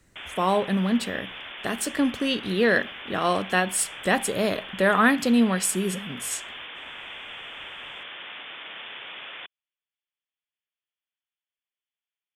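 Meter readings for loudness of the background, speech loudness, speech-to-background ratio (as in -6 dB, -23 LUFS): -37.5 LUFS, -24.5 LUFS, 13.0 dB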